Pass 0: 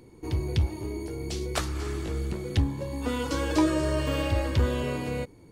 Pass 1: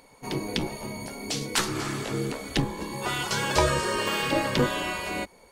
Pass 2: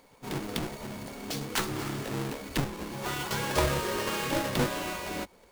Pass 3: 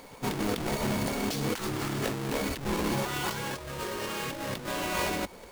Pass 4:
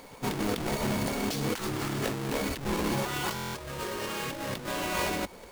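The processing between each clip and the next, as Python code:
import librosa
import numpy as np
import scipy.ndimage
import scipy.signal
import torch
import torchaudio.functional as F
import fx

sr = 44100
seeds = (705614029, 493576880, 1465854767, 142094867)

y1 = fx.spec_gate(x, sr, threshold_db=-10, keep='weak')
y1 = y1 * 10.0 ** (8.0 / 20.0)
y2 = fx.halfwave_hold(y1, sr)
y2 = y2 * 10.0 ** (-8.5 / 20.0)
y3 = fx.over_compress(y2, sr, threshold_db=-38.0, ratio=-1.0)
y3 = y3 * 10.0 ** (5.5 / 20.0)
y4 = fx.buffer_glitch(y3, sr, at_s=(3.34,), block=1024, repeats=8)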